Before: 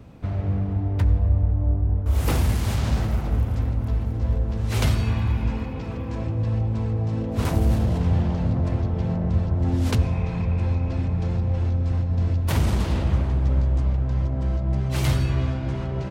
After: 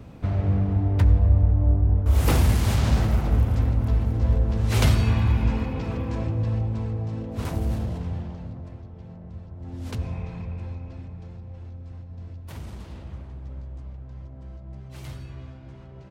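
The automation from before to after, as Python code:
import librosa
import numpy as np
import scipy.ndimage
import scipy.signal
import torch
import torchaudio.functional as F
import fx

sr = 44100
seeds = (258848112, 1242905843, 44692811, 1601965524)

y = fx.gain(x, sr, db=fx.line((5.96, 2.0), (7.27, -6.0), (7.79, -6.0), (8.83, -17.5), (9.54, -17.5), (10.11, -7.0), (11.38, -16.5)))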